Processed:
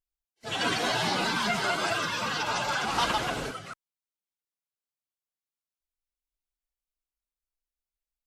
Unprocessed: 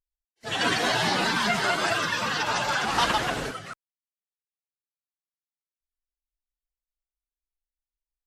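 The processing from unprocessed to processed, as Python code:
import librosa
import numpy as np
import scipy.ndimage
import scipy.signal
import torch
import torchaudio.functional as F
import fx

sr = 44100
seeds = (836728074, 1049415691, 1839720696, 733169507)

p1 = fx.notch(x, sr, hz=1800.0, q=9.3)
p2 = 10.0 ** (-27.5 / 20.0) * np.tanh(p1 / 10.0 ** (-27.5 / 20.0))
p3 = p1 + F.gain(torch.from_numpy(p2), -11.0).numpy()
y = F.gain(torch.from_numpy(p3), -4.0).numpy()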